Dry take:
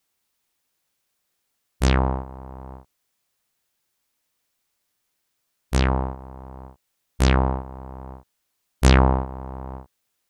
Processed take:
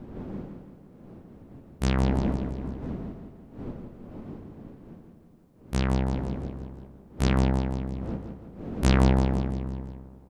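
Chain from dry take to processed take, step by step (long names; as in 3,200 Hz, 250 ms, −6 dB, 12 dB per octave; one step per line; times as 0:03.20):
wind on the microphone 320 Hz −34 dBFS
parametric band 200 Hz +6 dB 1.1 octaves
hum removal 53.01 Hz, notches 38
on a send: repeating echo 168 ms, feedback 51%, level −7 dB
on the sum: level −7.5 dB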